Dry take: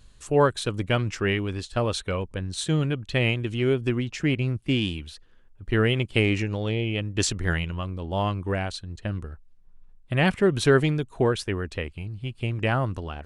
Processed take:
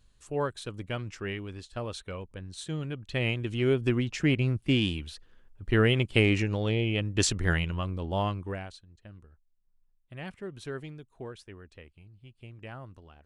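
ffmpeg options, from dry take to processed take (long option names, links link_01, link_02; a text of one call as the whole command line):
ffmpeg -i in.wav -af "volume=-1dB,afade=type=in:start_time=2.82:duration=1.1:silence=0.334965,afade=type=out:start_time=8.03:duration=0.57:silence=0.334965,afade=type=out:start_time=8.6:duration=0.26:silence=0.375837" out.wav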